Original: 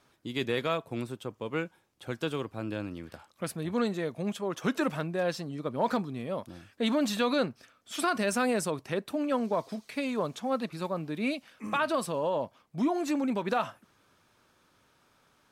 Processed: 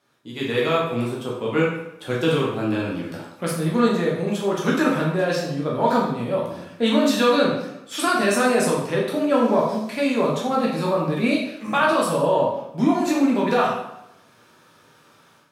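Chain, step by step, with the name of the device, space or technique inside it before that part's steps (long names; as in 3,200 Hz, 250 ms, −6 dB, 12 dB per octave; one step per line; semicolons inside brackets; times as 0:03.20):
far laptop microphone (convolution reverb RT60 0.85 s, pre-delay 8 ms, DRR −4 dB; high-pass filter 110 Hz; automatic gain control gain up to 11.5 dB)
level −4.5 dB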